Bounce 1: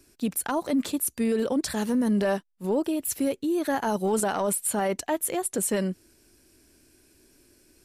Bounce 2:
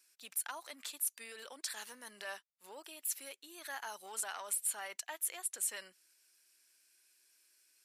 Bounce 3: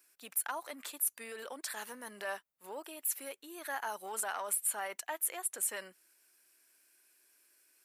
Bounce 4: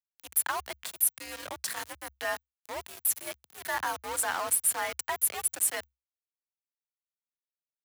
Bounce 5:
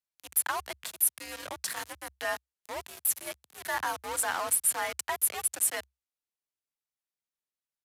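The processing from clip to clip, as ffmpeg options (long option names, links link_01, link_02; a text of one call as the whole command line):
ffmpeg -i in.wav -af "highpass=1500,volume=-7dB" out.wav
ffmpeg -i in.wav -af "equalizer=frequency=4900:width_type=o:width=2.4:gain=-11.5,volume=8.5dB" out.wav
ffmpeg -i in.wav -af "aeval=exprs='val(0)*gte(abs(val(0)),0.00944)':channel_layout=same,afreqshift=65,volume=7dB" out.wav
ffmpeg -i in.wav -af "aresample=32000,aresample=44100" out.wav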